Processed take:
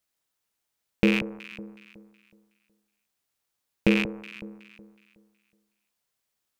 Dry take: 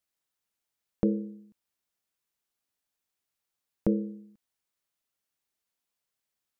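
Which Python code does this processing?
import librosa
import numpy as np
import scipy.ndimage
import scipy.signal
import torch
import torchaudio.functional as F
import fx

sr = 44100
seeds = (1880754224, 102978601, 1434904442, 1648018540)

y = fx.rattle_buzz(x, sr, strikes_db=-35.0, level_db=-18.0)
y = fx.echo_alternate(y, sr, ms=185, hz=1100.0, feedback_pct=55, wet_db=-10.0)
y = y * 10.0 ** (4.5 / 20.0)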